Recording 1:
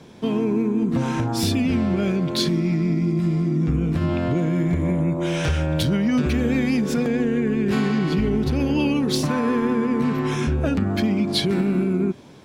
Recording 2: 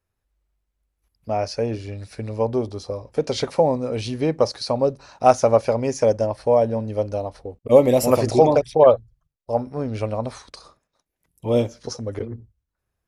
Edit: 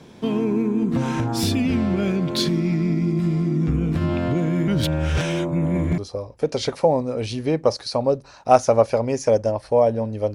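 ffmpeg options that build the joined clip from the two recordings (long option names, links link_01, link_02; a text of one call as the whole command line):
ffmpeg -i cue0.wav -i cue1.wav -filter_complex "[0:a]apad=whole_dur=10.34,atrim=end=10.34,asplit=2[link_01][link_02];[link_01]atrim=end=4.682[link_03];[link_02]atrim=start=4.678:end=5.982,asetpts=PTS-STARTPTS,areverse[link_04];[1:a]atrim=start=2.728:end=7.09[link_05];[link_03][link_04]acrossfade=duration=0.004:curve1=hsin:curve2=hsin[link_06];[link_06][link_05]acrossfade=duration=0.004:curve1=hsin:curve2=hsin" out.wav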